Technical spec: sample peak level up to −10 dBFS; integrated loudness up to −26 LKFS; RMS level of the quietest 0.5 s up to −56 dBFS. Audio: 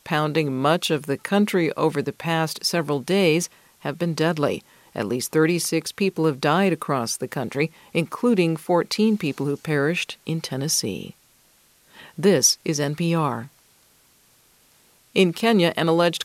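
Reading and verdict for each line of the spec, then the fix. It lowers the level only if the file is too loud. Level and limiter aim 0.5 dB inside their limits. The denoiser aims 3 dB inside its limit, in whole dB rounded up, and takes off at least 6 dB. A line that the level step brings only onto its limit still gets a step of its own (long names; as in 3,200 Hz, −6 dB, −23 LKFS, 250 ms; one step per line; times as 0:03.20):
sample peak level −4.5 dBFS: out of spec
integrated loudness −22.0 LKFS: out of spec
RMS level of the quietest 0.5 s −58 dBFS: in spec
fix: level −4.5 dB
brickwall limiter −10.5 dBFS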